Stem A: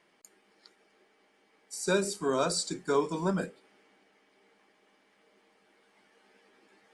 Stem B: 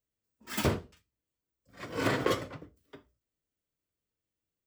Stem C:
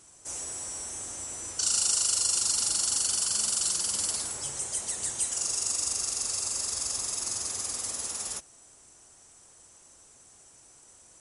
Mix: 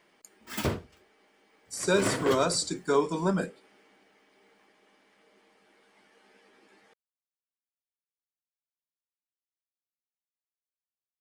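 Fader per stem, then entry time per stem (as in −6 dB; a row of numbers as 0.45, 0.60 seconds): +2.5 dB, −1.0 dB, muted; 0.00 s, 0.00 s, muted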